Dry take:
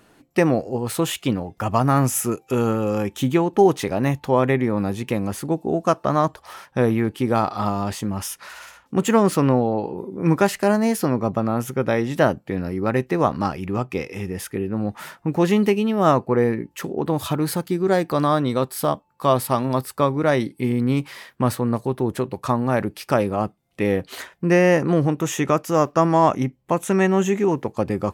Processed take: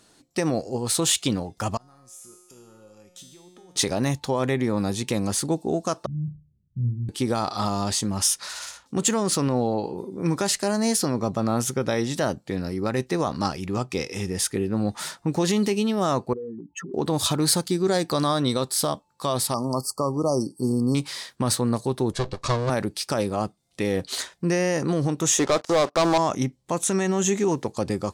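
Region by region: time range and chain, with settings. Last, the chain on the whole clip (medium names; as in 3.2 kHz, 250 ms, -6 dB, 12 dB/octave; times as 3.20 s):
1.77–3.76 s: compression 8:1, threshold -31 dBFS + feedback comb 180 Hz, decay 1.1 s, mix 90%
6.06–7.09 s: inverse Chebyshev low-pass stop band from 920 Hz, stop band 80 dB + flutter echo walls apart 5.7 m, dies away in 0.35 s
16.33–16.94 s: spectral contrast enhancement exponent 2.9 + compression 3:1, threshold -33 dBFS + Butterworth band-stop 640 Hz, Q 4
19.54–20.95 s: brick-wall FIR band-stop 1.3–4.3 kHz + peaking EQ 66 Hz -8 dB 1 oct
22.13–22.70 s: comb filter that takes the minimum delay 1.8 ms + low-pass 6.2 kHz
25.39–26.18 s: band-pass filter 720 Hz, Q 0.94 + waveshaping leveller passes 3
whole clip: level rider gain up to 5.5 dB; peak limiter -8.5 dBFS; high-order bell 5.9 kHz +12 dB; trim -5.5 dB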